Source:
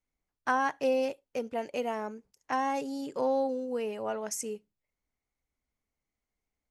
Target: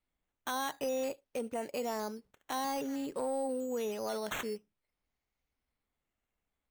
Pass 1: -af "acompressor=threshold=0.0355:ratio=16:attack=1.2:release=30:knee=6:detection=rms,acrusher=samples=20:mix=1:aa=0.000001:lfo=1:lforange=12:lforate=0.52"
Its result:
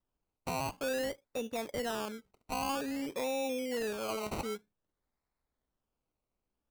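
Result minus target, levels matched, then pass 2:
decimation with a swept rate: distortion +9 dB
-af "acompressor=threshold=0.0355:ratio=16:attack=1.2:release=30:knee=6:detection=rms,acrusher=samples=7:mix=1:aa=0.000001:lfo=1:lforange=4.2:lforate=0.52"

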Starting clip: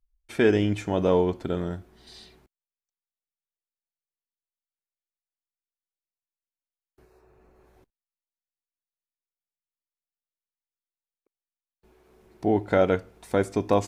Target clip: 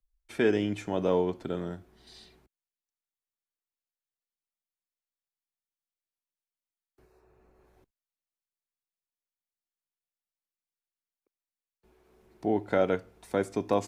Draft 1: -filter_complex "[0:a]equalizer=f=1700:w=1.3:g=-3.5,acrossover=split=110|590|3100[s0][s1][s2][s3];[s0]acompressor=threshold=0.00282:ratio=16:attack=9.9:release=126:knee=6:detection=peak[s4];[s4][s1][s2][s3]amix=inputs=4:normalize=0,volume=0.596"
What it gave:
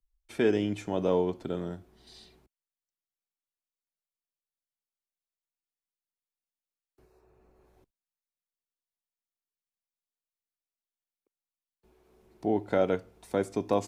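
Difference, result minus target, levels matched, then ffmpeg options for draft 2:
2 kHz band -3.0 dB
-filter_complex "[0:a]acrossover=split=110|590|3100[s0][s1][s2][s3];[s0]acompressor=threshold=0.00282:ratio=16:attack=9.9:release=126:knee=6:detection=peak[s4];[s4][s1][s2][s3]amix=inputs=4:normalize=0,volume=0.596"

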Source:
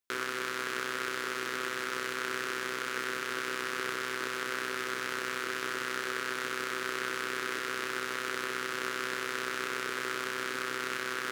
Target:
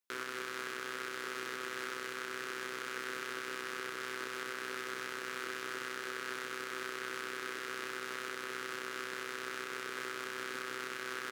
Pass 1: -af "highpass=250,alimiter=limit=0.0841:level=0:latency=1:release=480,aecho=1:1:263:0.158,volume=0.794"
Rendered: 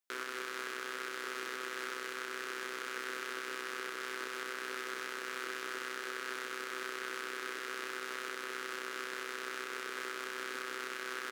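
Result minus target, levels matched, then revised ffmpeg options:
125 Hz band -10.0 dB
-af "highpass=92,alimiter=limit=0.0841:level=0:latency=1:release=480,aecho=1:1:263:0.158,volume=0.794"

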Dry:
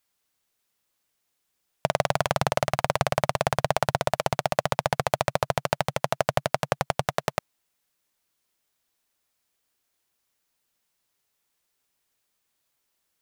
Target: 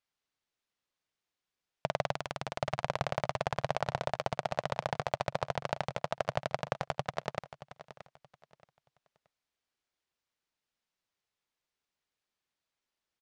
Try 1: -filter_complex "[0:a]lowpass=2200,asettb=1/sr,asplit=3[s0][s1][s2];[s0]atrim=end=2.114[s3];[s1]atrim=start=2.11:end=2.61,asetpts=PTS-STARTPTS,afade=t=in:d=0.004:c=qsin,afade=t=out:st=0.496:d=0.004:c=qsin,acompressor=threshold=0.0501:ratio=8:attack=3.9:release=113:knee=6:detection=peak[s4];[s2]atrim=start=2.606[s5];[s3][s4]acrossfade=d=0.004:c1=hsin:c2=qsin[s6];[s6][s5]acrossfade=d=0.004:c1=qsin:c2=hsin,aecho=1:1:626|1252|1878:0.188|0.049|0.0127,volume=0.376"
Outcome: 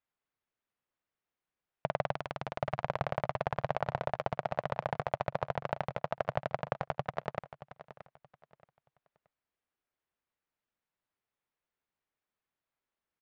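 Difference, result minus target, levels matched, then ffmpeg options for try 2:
4 kHz band -7.0 dB
-filter_complex "[0:a]lowpass=5300,asettb=1/sr,asplit=3[s0][s1][s2];[s0]atrim=end=2.114[s3];[s1]atrim=start=2.11:end=2.61,asetpts=PTS-STARTPTS,afade=t=in:d=0.004:c=qsin,afade=t=out:st=0.496:d=0.004:c=qsin,acompressor=threshold=0.0501:ratio=8:attack=3.9:release=113:knee=6:detection=peak[s4];[s2]atrim=start=2.606[s5];[s3][s4]acrossfade=d=0.004:c1=hsin:c2=qsin[s6];[s6][s5]acrossfade=d=0.004:c1=qsin:c2=hsin,aecho=1:1:626|1252|1878:0.188|0.049|0.0127,volume=0.376"

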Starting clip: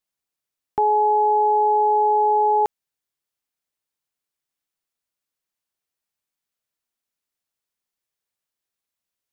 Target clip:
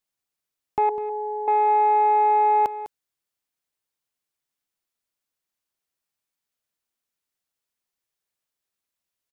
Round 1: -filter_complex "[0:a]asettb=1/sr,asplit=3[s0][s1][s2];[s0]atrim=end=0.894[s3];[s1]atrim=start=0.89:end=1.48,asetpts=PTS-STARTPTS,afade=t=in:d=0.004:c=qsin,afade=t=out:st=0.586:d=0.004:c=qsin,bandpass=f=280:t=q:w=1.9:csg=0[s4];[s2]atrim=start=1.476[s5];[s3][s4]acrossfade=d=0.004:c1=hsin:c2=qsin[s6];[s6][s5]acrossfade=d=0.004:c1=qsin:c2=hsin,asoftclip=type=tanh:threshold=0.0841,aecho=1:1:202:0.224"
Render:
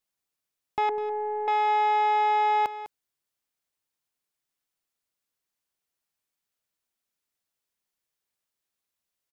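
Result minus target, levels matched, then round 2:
saturation: distortion +12 dB
-filter_complex "[0:a]asettb=1/sr,asplit=3[s0][s1][s2];[s0]atrim=end=0.894[s3];[s1]atrim=start=0.89:end=1.48,asetpts=PTS-STARTPTS,afade=t=in:d=0.004:c=qsin,afade=t=out:st=0.586:d=0.004:c=qsin,bandpass=f=280:t=q:w=1.9:csg=0[s4];[s2]atrim=start=1.476[s5];[s3][s4]acrossfade=d=0.004:c1=hsin:c2=qsin[s6];[s6][s5]acrossfade=d=0.004:c1=qsin:c2=hsin,asoftclip=type=tanh:threshold=0.237,aecho=1:1:202:0.224"

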